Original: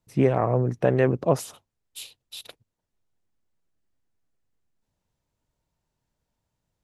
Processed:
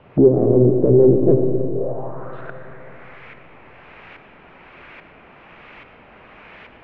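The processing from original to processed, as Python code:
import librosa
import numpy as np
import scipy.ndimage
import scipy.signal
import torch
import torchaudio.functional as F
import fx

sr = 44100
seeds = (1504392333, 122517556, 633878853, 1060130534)

y = scipy.signal.sosfilt(scipy.signal.butter(4, 100.0, 'highpass', fs=sr, output='sos'), x)
y = fx.dmg_noise_colour(y, sr, seeds[0], colour='white', level_db=-42.0)
y = fx.filter_lfo_lowpass(y, sr, shape='saw_up', hz=1.2, low_hz=620.0, high_hz=2000.0, q=0.74)
y = np.clip(10.0 ** (18.5 / 20.0) * y, -1.0, 1.0) / 10.0 ** (18.5 / 20.0)
y = fx.rev_freeverb(y, sr, rt60_s=3.7, hf_ratio=0.4, predelay_ms=35, drr_db=5.0)
y = fx.envelope_lowpass(y, sr, base_hz=370.0, top_hz=2800.0, q=3.3, full_db=-24.0, direction='down')
y = F.gain(torch.from_numpy(y), 6.0).numpy()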